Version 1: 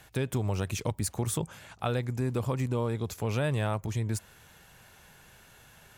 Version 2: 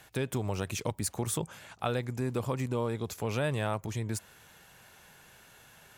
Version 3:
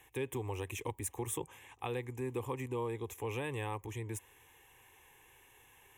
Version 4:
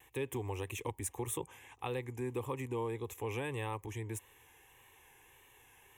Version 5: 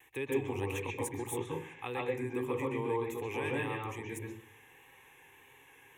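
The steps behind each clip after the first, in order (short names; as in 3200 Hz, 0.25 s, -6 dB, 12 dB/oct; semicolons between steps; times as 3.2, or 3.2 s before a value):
low shelf 110 Hz -9 dB
fixed phaser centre 940 Hz, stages 8; gain -2.5 dB
vibrato 1.7 Hz 44 cents
reverb RT60 0.45 s, pre-delay 0.125 s, DRR -1 dB; gain -2 dB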